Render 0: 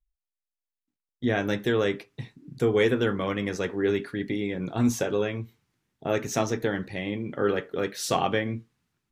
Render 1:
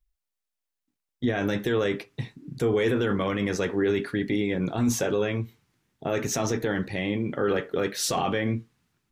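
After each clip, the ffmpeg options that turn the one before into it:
ffmpeg -i in.wav -af "alimiter=limit=-20.5dB:level=0:latency=1:release=17,volume=4.5dB" out.wav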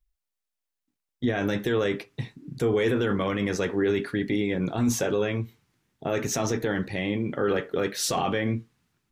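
ffmpeg -i in.wav -af anull out.wav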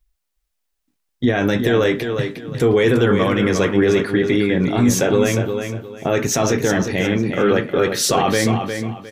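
ffmpeg -i in.wav -af "aecho=1:1:357|714|1071:0.447|0.121|0.0326,volume=8.5dB" out.wav

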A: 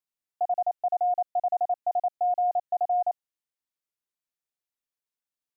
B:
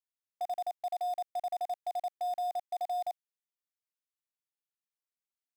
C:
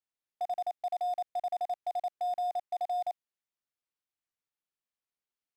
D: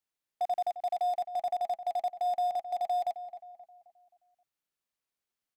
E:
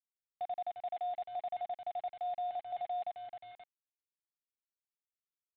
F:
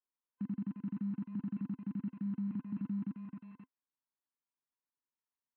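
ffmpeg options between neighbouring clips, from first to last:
ffmpeg -i in.wav -filter_complex "[0:a]lowshelf=frequency=500:gain=-9.5,asplit=2[link_01][link_02];[link_02]acrusher=bits=4:mix=0:aa=0.000001,volume=-10dB[link_03];[link_01][link_03]amix=inputs=2:normalize=0,volume=-8dB" out.wav
ffmpeg -i in.wav -af "lowpass=frequency=4000:poles=1,volume=1.5dB" out.wav
ffmpeg -i in.wav -filter_complex "[0:a]asplit=2[link_01][link_02];[link_02]adelay=264,lowpass=frequency=1600:poles=1,volume=-11dB,asplit=2[link_03][link_04];[link_04]adelay=264,lowpass=frequency=1600:poles=1,volume=0.45,asplit=2[link_05][link_06];[link_06]adelay=264,lowpass=frequency=1600:poles=1,volume=0.45,asplit=2[link_07][link_08];[link_08]adelay=264,lowpass=frequency=1600:poles=1,volume=0.45,asplit=2[link_09][link_10];[link_10]adelay=264,lowpass=frequency=1600:poles=1,volume=0.45[link_11];[link_01][link_03][link_05][link_07][link_09][link_11]amix=inputs=6:normalize=0,volume=3dB" out.wav
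ffmpeg -i in.wav -af "alimiter=level_in=6dB:limit=-24dB:level=0:latency=1:release=265,volume=-6dB,aresample=8000,aeval=exprs='val(0)*gte(abs(val(0)),0.00316)':channel_layout=same,aresample=44100,volume=-2.5dB" out.wav
ffmpeg -i in.wav -af "afftfilt=real='real(if(lt(b,1008),b+24*(1-2*mod(floor(b/24),2)),b),0)':imag='imag(if(lt(b,1008),b+24*(1-2*mod(floor(b/24),2)),b),0)':win_size=2048:overlap=0.75,highpass=100,equalizer=frequency=260:width_type=q:width=4:gain=8,equalizer=frequency=630:width_type=q:width=4:gain=-7,equalizer=frequency=990:width_type=q:width=4:gain=9,lowpass=frequency=2000:width=0.5412,lowpass=frequency=2000:width=1.3066,volume=-1dB" out.wav

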